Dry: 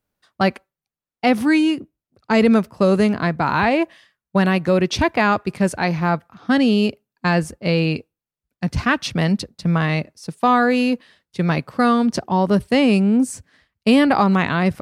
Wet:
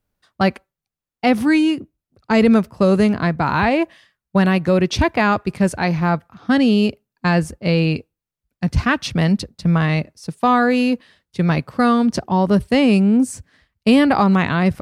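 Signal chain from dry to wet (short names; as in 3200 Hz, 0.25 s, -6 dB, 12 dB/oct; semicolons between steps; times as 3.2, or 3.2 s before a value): low shelf 100 Hz +9.5 dB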